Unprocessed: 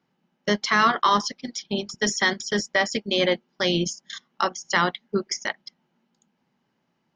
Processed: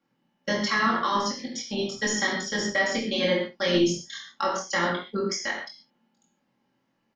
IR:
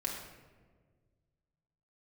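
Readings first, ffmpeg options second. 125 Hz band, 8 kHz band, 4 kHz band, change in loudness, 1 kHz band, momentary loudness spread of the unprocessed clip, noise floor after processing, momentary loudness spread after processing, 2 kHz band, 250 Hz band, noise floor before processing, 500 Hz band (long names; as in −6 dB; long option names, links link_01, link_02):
−2.0 dB, −1.5 dB, −3.0 dB, −2.5 dB, −4.5 dB, 12 LU, −74 dBFS, 9 LU, −2.0 dB, 0.0 dB, −74 dBFS, −1.0 dB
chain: -filter_complex "[0:a]acrossover=split=500[link_01][link_02];[link_02]acompressor=threshold=-21dB:ratio=6[link_03];[link_01][link_03]amix=inputs=2:normalize=0,aecho=1:1:23|70:0.631|0.178[link_04];[1:a]atrim=start_sample=2205,atrim=end_sample=6615[link_05];[link_04][link_05]afir=irnorm=-1:irlink=0,volume=-4dB"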